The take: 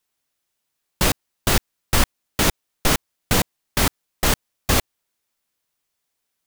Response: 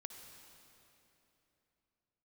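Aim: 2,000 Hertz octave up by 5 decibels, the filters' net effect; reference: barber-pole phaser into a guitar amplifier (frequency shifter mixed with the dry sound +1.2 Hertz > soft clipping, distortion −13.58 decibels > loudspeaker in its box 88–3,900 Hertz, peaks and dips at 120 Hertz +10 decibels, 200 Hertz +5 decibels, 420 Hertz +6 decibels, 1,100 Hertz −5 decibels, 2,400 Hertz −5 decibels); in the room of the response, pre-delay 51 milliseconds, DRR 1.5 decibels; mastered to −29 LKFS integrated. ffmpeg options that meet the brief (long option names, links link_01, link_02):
-filter_complex "[0:a]equalizer=frequency=2000:width_type=o:gain=8.5,asplit=2[link_01][link_02];[1:a]atrim=start_sample=2205,adelay=51[link_03];[link_02][link_03]afir=irnorm=-1:irlink=0,volume=3dB[link_04];[link_01][link_04]amix=inputs=2:normalize=0,asplit=2[link_05][link_06];[link_06]afreqshift=1.2[link_07];[link_05][link_07]amix=inputs=2:normalize=1,asoftclip=threshold=-14dB,highpass=88,equalizer=frequency=120:width_type=q:width=4:gain=10,equalizer=frequency=200:width_type=q:width=4:gain=5,equalizer=frequency=420:width_type=q:width=4:gain=6,equalizer=frequency=1100:width_type=q:width=4:gain=-5,equalizer=frequency=2400:width_type=q:width=4:gain=-5,lowpass=frequency=3900:width=0.5412,lowpass=frequency=3900:width=1.3066,volume=-3.5dB"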